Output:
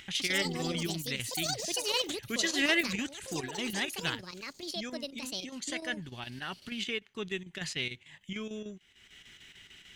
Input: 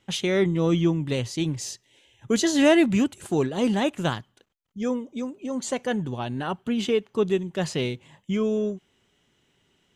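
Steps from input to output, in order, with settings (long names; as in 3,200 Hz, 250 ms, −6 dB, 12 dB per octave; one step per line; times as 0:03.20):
octave-band graphic EQ 125/250/500/1,000/2,000/4,000 Hz −7/−6/−11/−8/+8/+3 dB
square-wave tremolo 6.7 Hz, depth 60%, duty 80%
upward compression, threshold −33 dBFS
delay with pitch and tempo change per echo 144 ms, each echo +7 semitones, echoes 2
level −5 dB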